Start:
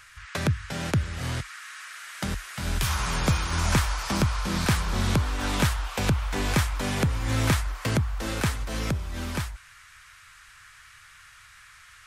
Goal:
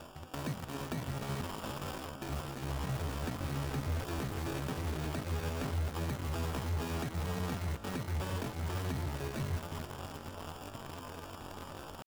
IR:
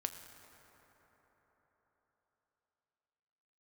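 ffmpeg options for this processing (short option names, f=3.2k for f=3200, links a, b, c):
-filter_complex "[0:a]acrossover=split=460|3900[a][b][c];[a]acompressor=threshold=-27dB:ratio=4[d];[b]acompressor=threshold=-34dB:ratio=4[e];[c]acompressor=threshold=-37dB:ratio=4[f];[d][e][f]amix=inputs=3:normalize=0,acrusher=samples=36:mix=1:aa=0.000001,areverse,acompressor=threshold=-47dB:ratio=4,areverse,bandreject=f=60:t=h:w=6,bandreject=f=120:t=h:w=6,bandreject=f=180:t=h:w=6,bandreject=f=240:t=h:w=6,bandreject=f=300:t=h:w=6,bandreject=f=360:t=h:w=6,bandreject=f=420:t=h:w=6,bandreject=f=480:t=h:w=6[g];[1:a]atrim=start_sample=2205,asetrate=25137,aresample=44100[h];[g][h]afir=irnorm=-1:irlink=0,asetrate=74167,aresample=44100,atempo=0.594604,asplit=2[i][j];[j]acrusher=bits=6:mix=0:aa=0.000001,volume=-5.5dB[k];[i][k]amix=inputs=2:normalize=0,volume=3dB"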